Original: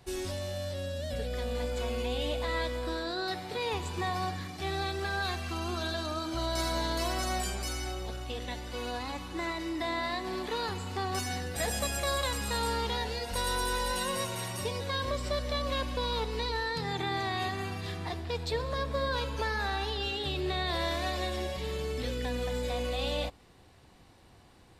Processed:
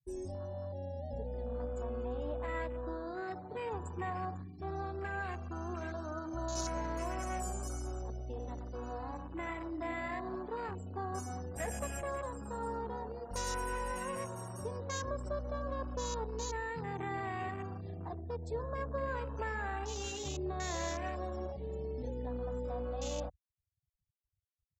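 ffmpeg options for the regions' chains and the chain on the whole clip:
ffmpeg -i in.wav -filter_complex "[0:a]asettb=1/sr,asplit=3[link_01][link_02][link_03];[link_01]atrim=end=7.324[link_04];[link_02]atrim=start=7.32:end=10.36,asetpts=PTS-STARTPTS,afade=type=in:duration=0.004:curve=qsin,afade=type=out:start_time=3.036:duration=0.004:curve=qsin,highshelf=frequency=4700:gain=3,aecho=1:1:73|96|178|218|339|521:0.141|0.398|0.1|0.119|0.119|0.119,atrim=end_sample=134064[link_05];[link_03]atrim=start=10.356[link_06];[link_04][link_05]acrossfade=duration=0.004:curve1=hsin:curve2=qsin[link_07];[link_07][link_06]acrossfade=duration=0.004:curve1=qsin:curve2=hsin,asettb=1/sr,asplit=3[link_08][link_09][link_10];[link_08]atrim=end=12.014[link_11];[link_09]atrim=start=12.01:end=13.31,asetpts=PTS-STARTPTS,afade=type=in:duration=0.004:curve=qsin,afade=type=out:start_time=1.296:duration=0.004:curve=qsin,highpass=89,highshelf=frequency=2000:gain=-8.5,acrusher=bits=2:mode=log:mix=0:aa=0.000001[link_12];[link_10]atrim=start=13.306[link_13];[link_11][link_12]acrossfade=duration=0.004:curve1=hsin:curve2=qsin[link_14];[link_14][link_13]acrossfade=duration=0.004:curve1=qsin:curve2=hsin,afftfilt=real='re*gte(hypot(re,im),0.0112)':imag='im*gte(hypot(re,im),0.0112)':win_size=1024:overlap=0.75,afwtdn=0.0141,highshelf=frequency=5100:width_type=q:width=3:gain=8.5,volume=-5dB" out.wav

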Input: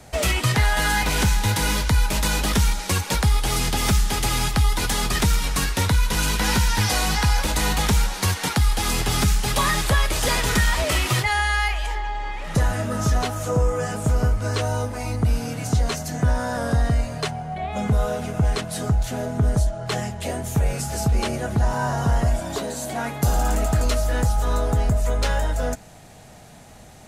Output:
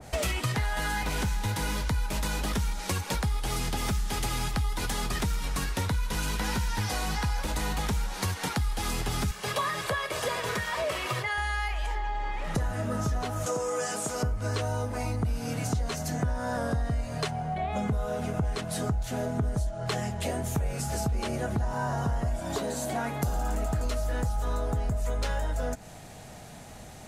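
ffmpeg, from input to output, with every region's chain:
ffmpeg -i in.wav -filter_complex "[0:a]asettb=1/sr,asplit=3[link_01][link_02][link_03];[link_01]atrim=end=9.314[link_04];[link_02]atrim=start=9.31:end=11.38,asetpts=PTS-STARTPTS,afade=type=in:duration=0.004:curve=qsin,afade=type=out:start_time=2.066:duration=0.004:curve=qsin,highpass=frequency=86:width=0.5412,highpass=frequency=86:width=1.3066,bass=frequency=250:gain=-8,treble=frequency=4000:gain=-6,aecho=1:1:1.8:0.48,atrim=end_sample=91287[link_05];[link_03]atrim=start=11.376[link_06];[link_04][link_05]acrossfade=duration=0.004:curve1=hsin:curve2=qsin[link_07];[link_07][link_06]acrossfade=duration=0.004:curve1=qsin:curve2=hsin,asettb=1/sr,asplit=3[link_08][link_09][link_10];[link_08]atrim=end=13.464[link_11];[link_09]atrim=start=13.46:end=14.23,asetpts=PTS-STARTPTS,afade=type=in:duration=0.004:curve=qsin,afade=type=out:start_time=0.766:duration=0.004:curve=qsin,highpass=270,equalizer=frequency=6700:width=0.42:gain=12[link_12];[link_10]atrim=start=14.226[link_13];[link_11][link_12]acrossfade=duration=0.004:curve1=hsin:curve2=qsin[link_14];[link_14][link_13]acrossfade=duration=0.004:curve1=qsin:curve2=hsin,acompressor=threshold=-27dB:ratio=4,adynamicequalizer=threshold=0.00794:dfrequency=1800:dqfactor=0.7:tfrequency=1800:tqfactor=0.7:attack=5:release=100:ratio=0.375:range=2:mode=cutabove:tftype=highshelf" out.wav

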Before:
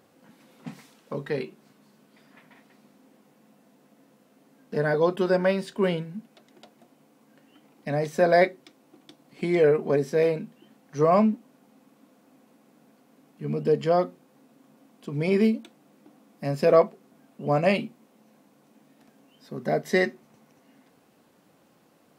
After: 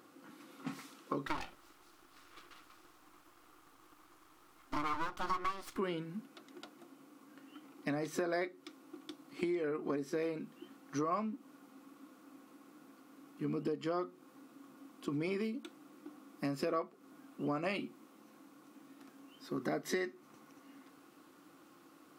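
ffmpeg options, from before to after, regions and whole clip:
ffmpeg -i in.wav -filter_complex "[0:a]asettb=1/sr,asplit=3[link_01][link_02][link_03];[link_01]atrim=end=1.274[link_04];[link_02]atrim=start=1.27:end=5.78,asetpts=PTS-STARTPTS,afade=type=in:duration=0.004:curve=qsin,afade=type=out:start_time=4.506:duration=0.004:curve=qsin,aecho=1:1:1.8:0.68,atrim=end_sample=198891,aeval=exprs='abs(val(0))':channel_layout=same[link_05];[link_03]atrim=start=5.776[link_06];[link_04][link_05]acrossfade=duration=0.004:curve1=hsin:curve2=qsin[link_07];[link_07][link_06]acrossfade=duration=0.004:curve1=qsin:curve2=hsin,superequalizer=6b=3.16:8b=0.708:10b=2.24,acompressor=threshold=-28dB:ratio=16,lowshelf=frequency=470:gain=-7.5" out.wav

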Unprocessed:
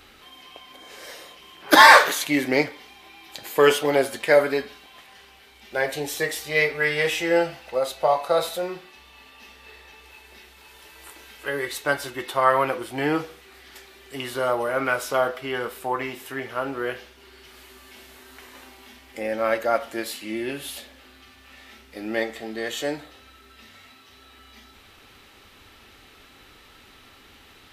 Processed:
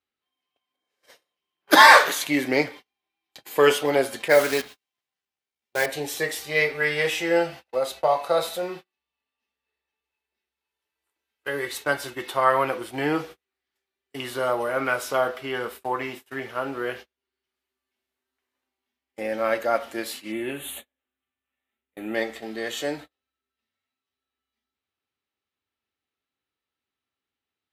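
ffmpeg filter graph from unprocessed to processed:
ffmpeg -i in.wav -filter_complex "[0:a]asettb=1/sr,asplit=3[link_01][link_02][link_03];[link_01]atrim=end=4.284[link_04];[link_02]atrim=start=4.28:end=5.86,asetpts=PTS-STARTPTS,afade=type=in:duration=0.004:curve=qsin,afade=type=out:start_time=1.576:duration=0.004:curve=qsin,acrusher=bits=6:dc=4:mix=0:aa=0.000001,adynamicequalizer=threshold=0.0224:dfrequency=1700:dqfactor=0.7:tfrequency=1700:tqfactor=0.7:attack=5:release=100:ratio=0.375:range=2.5:mode=boostabove:tftype=highshelf[link_05];[link_03]atrim=start=5.856[link_06];[link_04][link_05]acrossfade=duration=0.004:curve1=hsin:curve2=qsin[link_07];[link_07][link_06]acrossfade=duration=0.004:curve1=qsin:curve2=hsin,asettb=1/sr,asplit=3[link_08][link_09][link_10];[link_08]atrim=end=20.324[link_11];[link_09]atrim=start=20.32:end=22.15,asetpts=PTS-STARTPTS,afade=type=in:duration=0.004:curve=qsin,afade=type=out:start_time=1.826:duration=0.004:curve=qsin,asuperstop=centerf=5100:order=4:qfactor=1.5,highshelf=frequency=12000:gain=7[link_12];[link_10]atrim=start=22.146[link_13];[link_11][link_12]acrossfade=duration=0.004:curve1=hsin:curve2=qsin[link_14];[link_14][link_13]acrossfade=duration=0.004:curve1=qsin:curve2=hsin,agate=range=-37dB:threshold=-37dB:ratio=16:detection=peak,highpass=78,volume=-1dB" out.wav

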